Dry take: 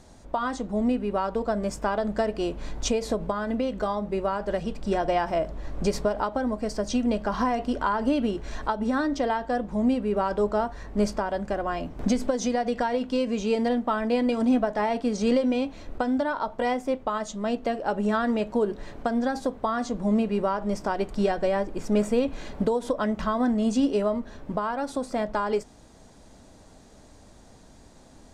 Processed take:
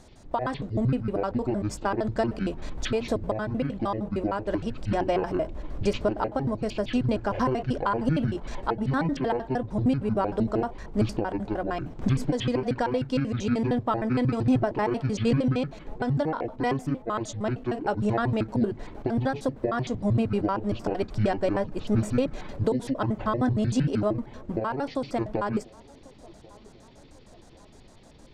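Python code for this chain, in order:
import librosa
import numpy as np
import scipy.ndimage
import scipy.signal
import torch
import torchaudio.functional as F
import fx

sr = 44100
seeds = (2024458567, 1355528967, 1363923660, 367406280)

y = fx.pitch_trill(x, sr, semitones=-11.0, every_ms=77)
y = fx.echo_wet_bandpass(y, sr, ms=1091, feedback_pct=49, hz=520.0, wet_db=-22.5)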